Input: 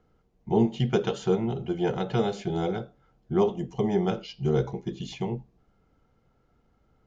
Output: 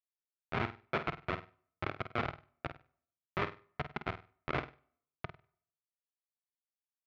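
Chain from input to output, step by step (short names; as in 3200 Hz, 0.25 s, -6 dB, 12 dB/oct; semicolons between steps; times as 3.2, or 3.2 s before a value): half-wave gain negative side -12 dB; low-pass opened by the level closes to 470 Hz, open at -23.5 dBFS; tilt +2.5 dB/oct; in parallel at +2 dB: compressor 12:1, threshold -39 dBFS, peak gain reduction 16.5 dB; on the sum: Schmitt trigger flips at -23 dBFS; speaker cabinet 140–3600 Hz, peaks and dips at 200 Hz -10 dB, 290 Hz -5 dB, 470 Hz -5 dB, 670 Hz +5 dB, 1300 Hz +9 dB, 2200 Hz +8 dB; flutter echo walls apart 8.5 m, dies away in 0.29 s; on a send at -22 dB: reverb RT60 0.65 s, pre-delay 3 ms; on the sum: gain +5 dB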